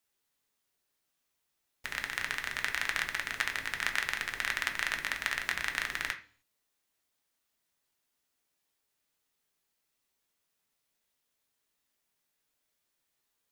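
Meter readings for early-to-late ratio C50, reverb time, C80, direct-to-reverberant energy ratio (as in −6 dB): 12.5 dB, 0.45 s, 17.5 dB, 3.5 dB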